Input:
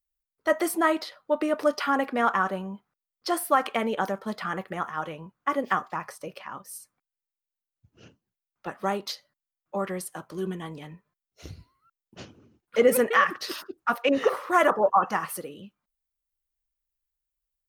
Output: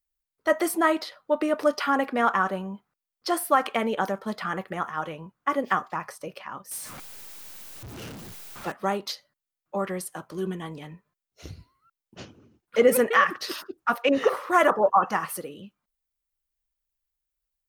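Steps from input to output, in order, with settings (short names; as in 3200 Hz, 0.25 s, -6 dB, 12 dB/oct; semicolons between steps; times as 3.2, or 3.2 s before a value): 6.71–8.72 zero-crossing step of -35.5 dBFS; gain +1 dB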